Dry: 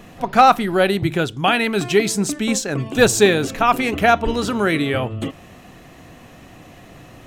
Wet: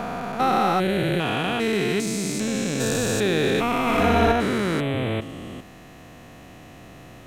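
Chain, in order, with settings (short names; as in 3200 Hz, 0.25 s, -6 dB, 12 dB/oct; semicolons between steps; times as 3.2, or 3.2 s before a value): stepped spectrum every 0.4 s; 3.81–4.32 flutter echo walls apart 10.3 m, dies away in 1.4 s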